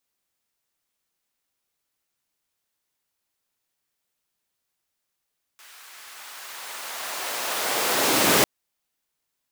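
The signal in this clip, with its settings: swept filtered noise pink, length 2.85 s highpass, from 1.4 kHz, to 200 Hz, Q 0.97, linear, gain ramp +30 dB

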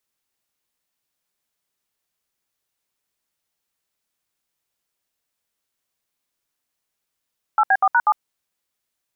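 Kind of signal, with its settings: DTMF "8B4#7", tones 54 ms, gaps 68 ms, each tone -15 dBFS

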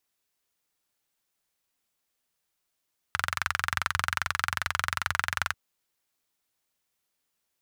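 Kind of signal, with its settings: single-cylinder engine model, steady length 2.39 s, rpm 2700, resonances 86/1400 Hz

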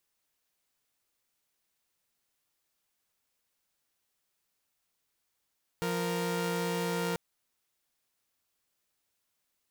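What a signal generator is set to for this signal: chord F3/A#4 saw, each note -30 dBFS 1.34 s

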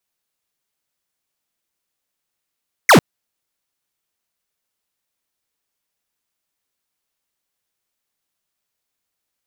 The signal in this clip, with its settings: laser zap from 2.3 kHz, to 120 Hz, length 0.10 s square, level -8 dB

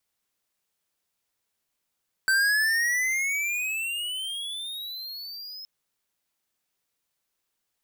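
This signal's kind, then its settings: gliding synth tone square, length 3.37 s, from 1.54 kHz, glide +21 st, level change -18.5 dB, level -21 dB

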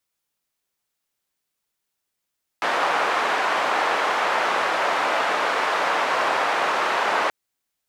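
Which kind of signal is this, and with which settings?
noise band 640–1200 Hz, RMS -22 dBFS 4.68 s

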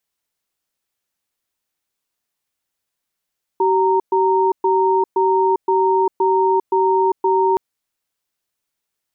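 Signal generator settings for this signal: cadence 382 Hz, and 927 Hz, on 0.40 s, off 0.12 s, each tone -15.5 dBFS 3.97 s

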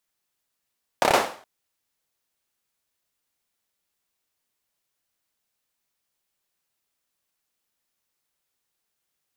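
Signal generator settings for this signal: hand clap length 0.42 s, bursts 5, apart 29 ms, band 660 Hz, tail 0.44 s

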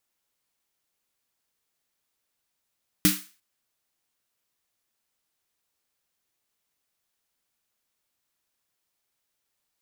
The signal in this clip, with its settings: snare drum length 0.35 s, tones 190 Hz, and 300 Hz, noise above 1.3 kHz, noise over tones -0.5 dB, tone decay 0.24 s, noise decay 0.37 s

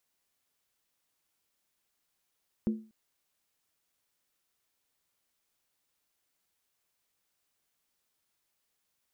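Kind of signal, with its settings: skin hit length 0.24 s, lowest mode 219 Hz, decay 0.36 s, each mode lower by 10 dB, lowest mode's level -22.5 dB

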